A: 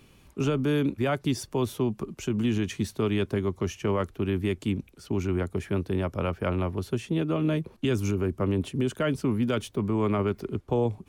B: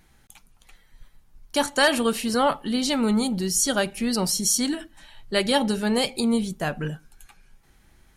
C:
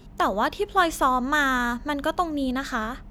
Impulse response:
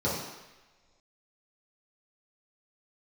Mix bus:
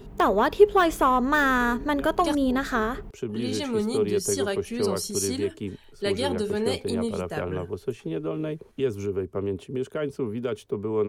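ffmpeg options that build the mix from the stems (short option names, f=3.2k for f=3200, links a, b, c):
-filter_complex "[0:a]equalizer=f=700:t=o:w=1.9:g=4,adelay=950,volume=-7.5dB[a];[1:a]adelay=700,volume=-7.5dB,asplit=3[b][c][d];[b]atrim=end=2.35,asetpts=PTS-STARTPTS,afade=t=out:st=2.346:d=0.004:c=hsin[e];[c]atrim=start=2.35:end=3.29,asetpts=PTS-STARTPTS,volume=0[f];[d]atrim=start=3.29,asetpts=PTS-STARTPTS,afade=t=in:d=0.004:c=hsin[g];[e][f][g]concat=n=3:v=0:a=1[h];[2:a]asoftclip=type=tanh:threshold=-14.5dB,deesser=0.6,equalizer=f=5.3k:w=0.76:g=-5,volume=2.5dB,asplit=2[i][j];[j]apad=whole_len=530744[k];[a][k]sidechaincompress=threshold=-35dB:ratio=8:attack=16:release=334[l];[l][h][i]amix=inputs=3:normalize=0,equalizer=f=420:w=5.3:g=11.5"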